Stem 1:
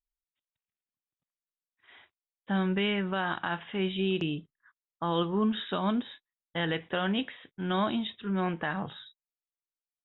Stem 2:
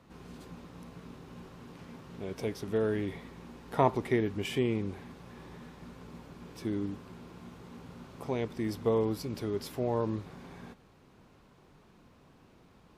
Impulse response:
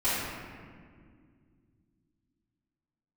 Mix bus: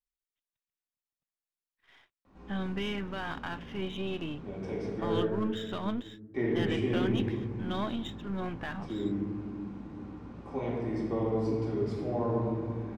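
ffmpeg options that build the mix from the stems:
-filter_complex "[0:a]aeval=exprs='if(lt(val(0),0),0.447*val(0),val(0))':c=same,volume=0.708[s0];[1:a]lowpass=f=8300:w=0.5412,lowpass=f=8300:w=1.3066,highshelf=f=2500:g=-11,adelay=2250,volume=0.376,asplit=3[s1][s2][s3];[s1]atrim=end=5.2,asetpts=PTS-STARTPTS,afade=t=out:st=5.196:d=0.004:c=hsin[s4];[s2]atrim=start=5.2:end=6.34,asetpts=PTS-STARTPTS,volume=0[s5];[s3]atrim=start=6.34,asetpts=PTS-STARTPTS,afade=t=in:d=0.004:c=hsin[s6];[s4][s5][s6]concat=n=3:v=0:a=1,asplit=2[s7][s8];[s8]volume=0.708[s9];[2:a]atrim=start_sample=2205[s10];[s9][s10]afir=irnorm=-1:irlink=0[s11];[s0][s7][s11]amix=inputs=3:normalize=0"

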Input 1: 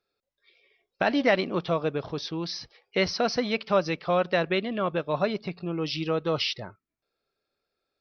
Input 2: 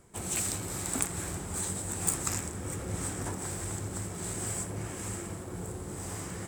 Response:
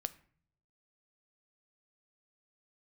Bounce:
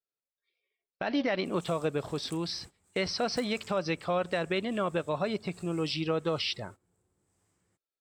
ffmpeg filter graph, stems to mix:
-filter_complex "[0:a]alimiter=limit=0.119:level=0:latency=1:release=91,volume=0.841,asplit=2[s0][s1];[1:a]equalizer=f=3500:w=0.74:g=3.5,adelay=1300,volume=0.112[s2];[s1]apad=whole_len=342924[s3];[s2][s3]sidechaincompress=threshold=0.0316:ratio=8:attack=20:release=406[s4];[s0][s4]amix=inputs=2:normalize=0,agate=range=0.126:threshold=0.00501:ratio=16:detection=peak"

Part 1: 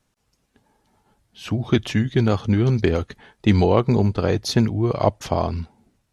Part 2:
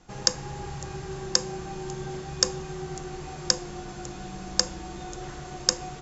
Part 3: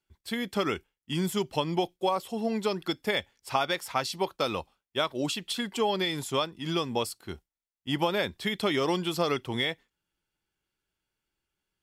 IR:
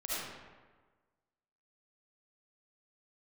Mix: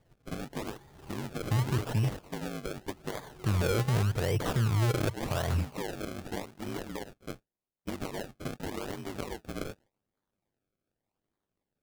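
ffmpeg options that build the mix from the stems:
-filter_complex "[0:a]acompressor=threshold=0.0355:ratio=1.5,equalizer=f=125:t=o:w=1:g=10,equalizer=f=250:t=o:w=1:g=-9,equalizer=f=500:t=o:w=1:g=5,equalizer=f=4000:t=o:w=1:g=-12,equalizer=f=8000:t=o:w=1:g=11,volume=0.944,asplit=3[s0][s1][s2];[s0]atrim=end=2.14,asetpts=PTS-STARTPTS,afade=t=out:st=2.136:d=0.004:c=hsin[s3];[s1]atrim=start=2.14:end=3.14,asetpts=PTS-STARTPTS,volume=0[s4];[s2]atrim=start=3.14,asetpts=PTS-STARTPTS,afade=t=in:d=0.004:c=hsin[s5];[s3][s4][s5]concat=n=3:v=0:a=1,asplit=2[s6][s7];[1:a]tremolo=f=2.6:d=0.6,adelay=350,volume=0.251[s8];[2:a]highpass=97,highshelf=f=6400:g=-4.5,aeval=exprs='val(0)*sin(2*PI*50*n/s)':c=same,volume=1.41[s9];[s7]apad=whole_len=280656[s10];[s8][s10]sidechaincompress=threshold=0.0282:ratio=8:attack=16:release=1110[s11];[s11][s9]amix=inputs=2:normalize=0,acrusher=samples=25:mix=1:aa=0.000001:lfo=1:lforange=40:lforate=3.4,acompressor=threshold=0.02:ratio=6,volume=1[s12];[s6][s12]amix=inputs=2:normalize=0,acrusher=samples=32:mix=1:aa=0.000001:lfo=1:lforange=32:lforate=0.86,alimiter=limit=0.0841:level=0:latency=1:release=45"

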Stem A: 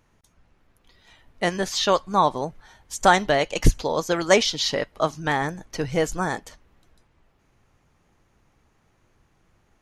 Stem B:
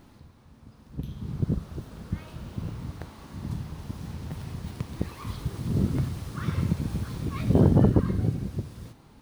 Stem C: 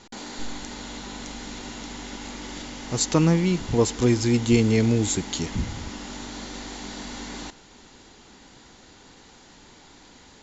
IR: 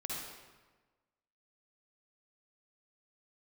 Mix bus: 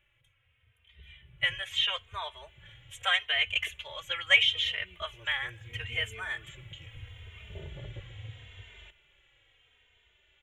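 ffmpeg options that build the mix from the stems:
-filter_complex "[0:a]highpass=1200,volume=0.944,asplit=2[s0][s1];[1:a]volume=0.2[s2];[2:a]adelay=1400,volume=0.251[s3];[s1]apad=whole_len=521570[s4];[s3][s4]sidechaincompress=threshold=0.02:ratio=4:attack=16:release=1190[s5];[s0][s2][s5]amix=inputs=3:normalize=0,firequalizer=gain_entry='entry(110,0);entry(170,-18);entry(250,-26);entry(380,-9);entry(560,-3);entry(810,-12);entry(2200,7);entry(3200,9);entry(4600,-28);entry(7400,-11)':delay=0.05:min_phase=1,asplit=2[s6][s7];[s7]adelay=3,afreqshift=-0.77[s8];[s6][s8]amix=inputs=2:normalize=1"

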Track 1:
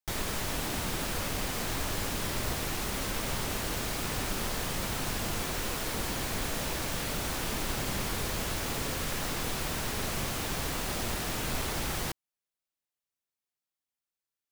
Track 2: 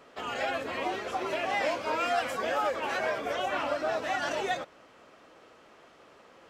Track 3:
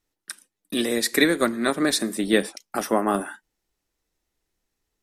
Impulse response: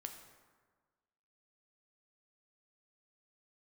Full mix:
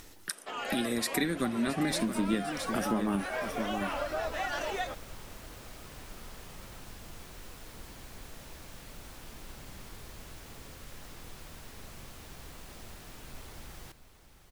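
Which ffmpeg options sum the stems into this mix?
-filter_complex "[0:a]lowshelf=f=69:g=7.5,adelay=1800,volume=0.15,asplit=2[s0][s1];[s1]volume=0.266[s2];[1:a]highpass=f=310:p=1,adelay=300,volume=0.841[s3];[2:a]asubboost=boost=11.5:cutoff=200,acompressor=mode=upward:threshold=0.0562:ratio=2.5,volume=0.668,asplit=2[s4][s5];[s5]volume=0.251[s6];[s2][s6]amix=inputs=2:normalize=0,aecho=0:1:669:1[s7];[s0][s3][s4][s7]amix=inputs=4:normalize=0,acompressor=threshold=0.0355:ratio=3"

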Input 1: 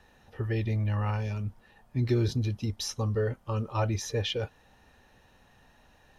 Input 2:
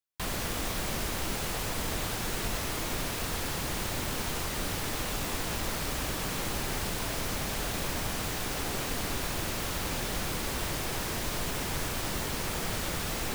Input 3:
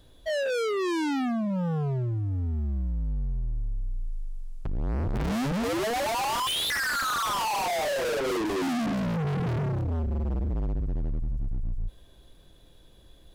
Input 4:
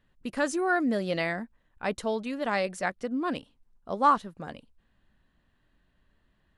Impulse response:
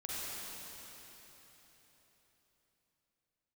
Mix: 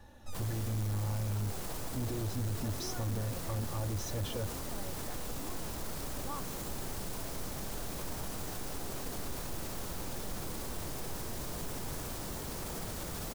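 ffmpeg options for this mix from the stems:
-filter_complex "[0:a]equalizer=f=100:t=o:w=0.77:g=10.5,aecho=1:1:3.5:0.83,alimiter=limit=0.0708:level=0:latency=1:release=134,volume=1.19[s0];[1:a]adelay=150,volume=0.891[s1];[2:a]aeval=exprs='abs(val(0))':c=same,volume=0.398[s2];[3:a]adelay=2250,volume=0.211[s3];[s0][s1][s2][s3]amix=inputs=4:normalize=0,equalizer=f=2400:w=0.7:g=-8,volume=16.8,asoftclip=hard,volume=0.0596,alimiter=level_in=2.11:limit=0.0631:level=0:latency=1,volume=0.473"

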